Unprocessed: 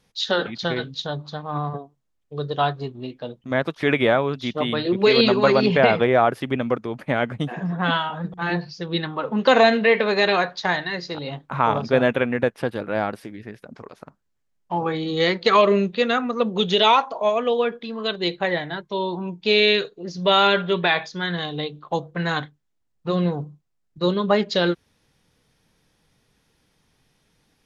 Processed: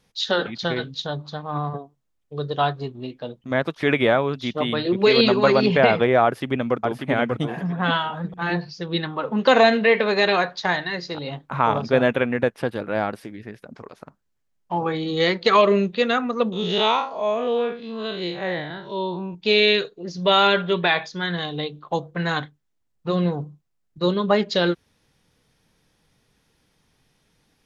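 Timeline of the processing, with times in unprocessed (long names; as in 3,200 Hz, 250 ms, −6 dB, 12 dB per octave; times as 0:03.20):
0:06.24–0:07.05: delay throw 590 ms, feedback 15%, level −4.5 dB
0:16.52–0:19.35: spectrum smeared in time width 117 ms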